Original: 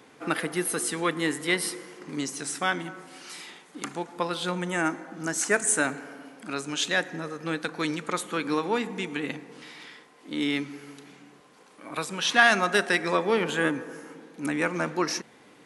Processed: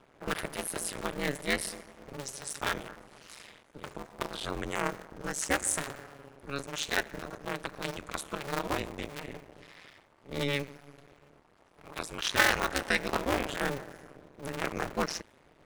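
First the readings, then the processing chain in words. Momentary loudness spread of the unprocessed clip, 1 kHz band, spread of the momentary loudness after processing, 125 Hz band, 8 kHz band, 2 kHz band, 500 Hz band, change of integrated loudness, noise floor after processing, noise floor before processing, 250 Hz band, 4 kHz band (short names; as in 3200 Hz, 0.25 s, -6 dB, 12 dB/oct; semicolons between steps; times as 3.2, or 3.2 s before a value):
18 LU, -5.5 dB, 19 LU, -3.5 dB, -5.5 dB, -6.5 dB, -6.5 dB, -5.5 dB, -63 dBFS, -55 dBFS, -8.5 dB, -4.5 dB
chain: cycle switcher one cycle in 2, muted; ring modulator 140 Hz; mismatched tape noise reduction decoder only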